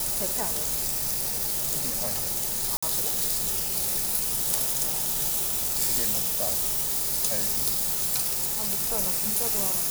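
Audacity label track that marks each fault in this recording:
2.770000	2.830000	drop-out 55 ms

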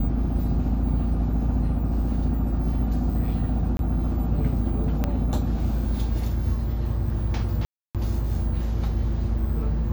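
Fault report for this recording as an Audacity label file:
3.770000	3.790000	drop-out 22 ms
5.040000	5.040000	click −12 dBFS
7.650000	7.950000	drop-out 297 ms

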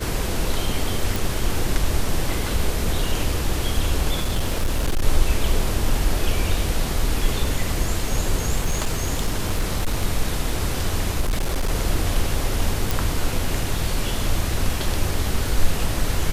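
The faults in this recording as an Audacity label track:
1.160000	1.160000	click
4.210000	5.030000	clipping −16 dBFS
8.640000	10.030000	clipping −16 dBFS
11.200000	11.700000	clipping −17.5 dBFS
12.910000	12.910000	click

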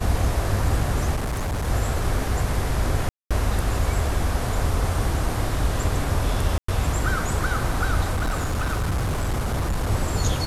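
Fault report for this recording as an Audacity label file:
1.150000	1.680000	clipping −22.5 dBFS
3.090000	3.310000	drop-out 216 ms
6.580000	6.680000	drop-out 104 ms
8.110000	9.910000	clipping −20 dBFS

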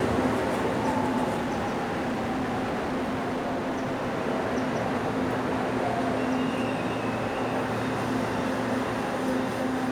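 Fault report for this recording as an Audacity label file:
1.360000	4.160000	clipping −25 dBFS

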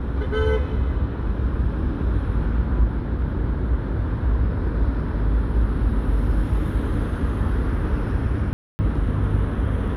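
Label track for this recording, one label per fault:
8.530000	8.790000	drop-out 260 ms

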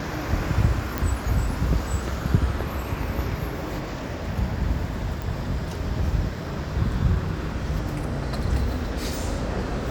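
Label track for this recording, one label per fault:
0.980000	0.980000	click
5.220000	5.220000	click

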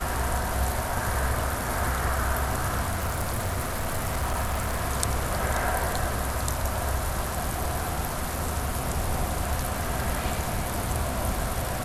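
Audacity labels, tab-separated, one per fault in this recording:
2.900000	4.810000	clipping −23 dBFS

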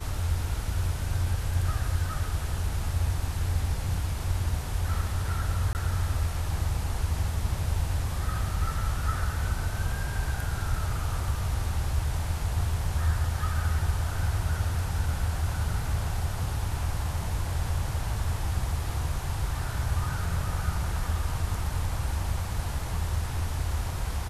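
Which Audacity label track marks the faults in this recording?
5.730000	5.750000	drop-out 19 ms

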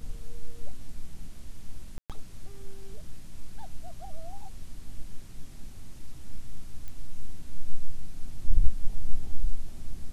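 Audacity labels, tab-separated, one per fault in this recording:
1.980000	2.100000	drop-out 117 ms
6.880000	6.880000	click −24 dBFS

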